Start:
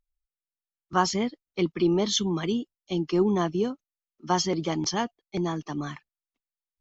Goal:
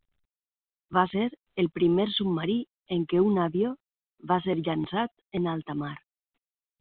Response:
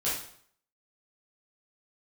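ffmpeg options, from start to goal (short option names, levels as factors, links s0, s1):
-filter_complex "[0:a]asettb=1/sr,asplit=3[s0][s1][s2];[s0]atrim=end=3.344[s3];[s1]atrim=start=3.34:end=4.43,asetpts=PTS-STARTPTS,afade=t=in:d=0.004:c=qsin,afade=t=out:st=1.086:d=0.004:c=qsin,lowpass=2500[s4];[s2]atrim=start=4.426[s5];[s3][s4]acrossfade=d=0.004:c1=hsin:c2=qsin[s6];[s6][s5]acrossfade=d=0.004:c1=qsin:c2=hsin" -ar 8000 -c:a pcm_mulaw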